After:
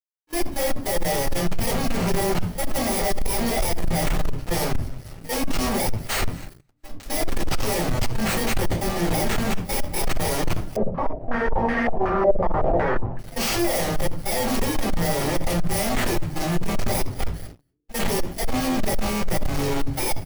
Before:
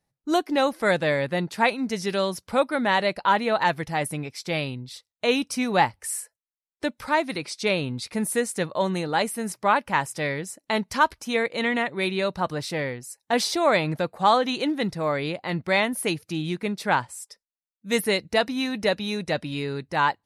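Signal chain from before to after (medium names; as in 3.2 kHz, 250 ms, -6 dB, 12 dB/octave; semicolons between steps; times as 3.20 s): bit-reversed sample order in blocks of 32 samples; Schmitt trigger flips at -30.5 dBFS; slow attack 248 ms; hum notches 50/100/150/200/250/300 Hz; frequency-shifting echo 229 ms, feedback 39%, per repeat -150 Hz, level -20 dB; level held to a coarse grid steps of 19 dB; simulated room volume 130 m³, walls furnished, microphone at 4.2 m; waveshaping leveller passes 3; 10.76–13.19 s: step-sequenced low-pass 5.4 Hz 550–1800 Hz; trim -5 dB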